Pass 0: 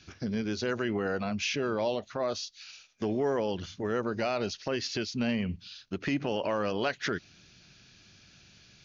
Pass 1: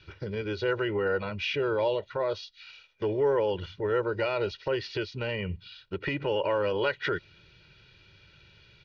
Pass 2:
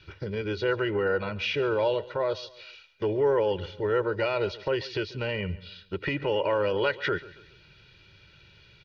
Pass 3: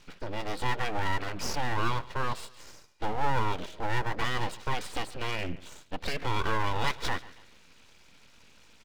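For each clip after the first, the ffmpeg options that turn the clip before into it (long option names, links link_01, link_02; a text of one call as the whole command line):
ffmpeg -i in.wav -af "lowpass=frequency=3700:width=0.5412,lowpass=frequency=3700:width=1.3066,aecho=1:1:2.1:0.86" out.wav
ffmpeg -i in.wav -af "aecho=1:1:139|278|417:0.112|0.046|0.0189,volume=1.5dB" out.wav
ffmpeg -i in.wav -af "aeval=exprs='abs(val(0))':channel_layout=same" out.wav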